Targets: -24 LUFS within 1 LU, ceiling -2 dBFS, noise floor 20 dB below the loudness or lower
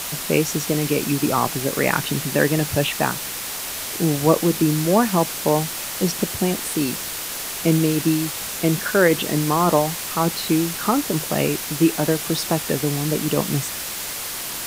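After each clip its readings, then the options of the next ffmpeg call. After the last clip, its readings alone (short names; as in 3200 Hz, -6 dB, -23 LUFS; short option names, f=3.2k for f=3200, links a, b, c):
noise floor -30 dBFS; noise floor target -41 dBFS; loudness -21.0 LUFS; peak -2.0 dBFS; loudness target -24.0 LUFS
-> -af "afftdn=nr=11:nf=-30"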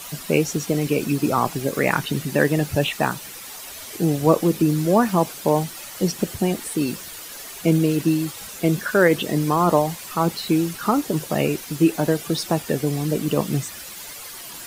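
noise floor -37 dBFS; noise floor target -42 dBFS
-> -af "afftdn=nr=6:nf=-37"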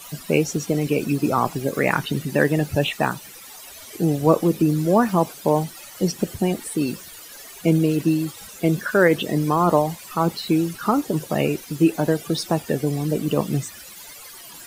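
noise floor -41 dBFS; noise floor target -42 dBFS
-> -af "afftdn=nr=6:nf=-41"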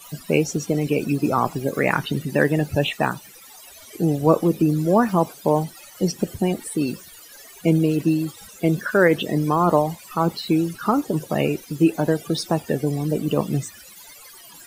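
noise floor -45 dBFS; loudness -22.0 LUFS; peak -2.0 dBFS; loudness target -24.0 LUFS
-> -af "volume=-2dB"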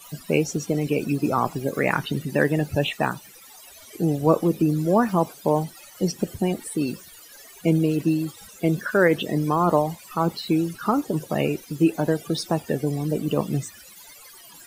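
loudness -24.0 LUFS; peak -4.0 dBFS; noise floor -47 dBFS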